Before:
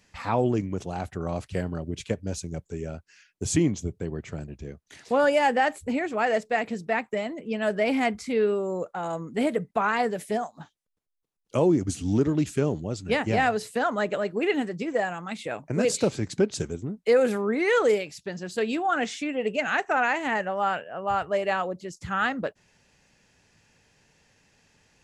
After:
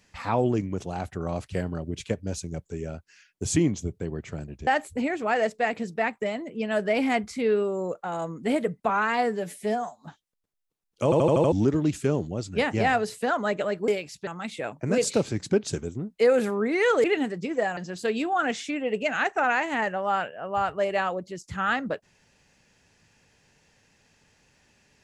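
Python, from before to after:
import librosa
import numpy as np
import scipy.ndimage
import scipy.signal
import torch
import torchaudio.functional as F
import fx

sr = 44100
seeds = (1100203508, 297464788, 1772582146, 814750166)

y = fx.edit(x, sr, fx.cut(start_s=4.67, length_s=0.91),
    fx.stretch_span(start_s=9.8, length_s=0.76, factor=1.5),
    fx.stutter_over(start_s=11.57, slice_s=0.08, count=6),
    fx.swap(start_s=14.41, length_s=0.73, other_s=17.91, other_length_s=0.39), tone=tone)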